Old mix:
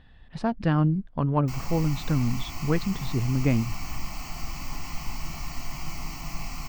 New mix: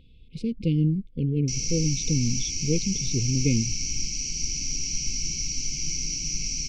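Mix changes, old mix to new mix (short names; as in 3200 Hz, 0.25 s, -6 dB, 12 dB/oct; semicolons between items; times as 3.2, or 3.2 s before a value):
background: add synth low-pass 5800 Hz, resonance Q 16; master: add brick-wall FIR band-stop 530–2100 Hz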